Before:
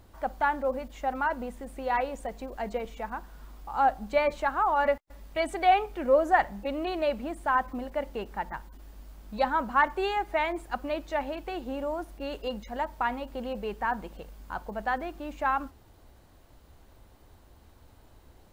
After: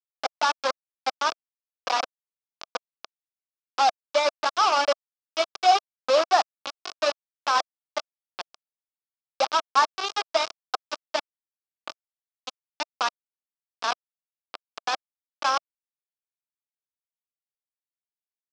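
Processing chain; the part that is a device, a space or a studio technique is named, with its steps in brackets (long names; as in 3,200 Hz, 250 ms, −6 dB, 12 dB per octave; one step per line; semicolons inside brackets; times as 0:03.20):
hand-held game console (bit reduction 4 bits; loudspeaker in its box 420–5,600 Hz, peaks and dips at 660 Hz +5 dB, 1,200 Hz +7 dB, 1,900 Hz −8 dB, 5,200 Hz +7 dB)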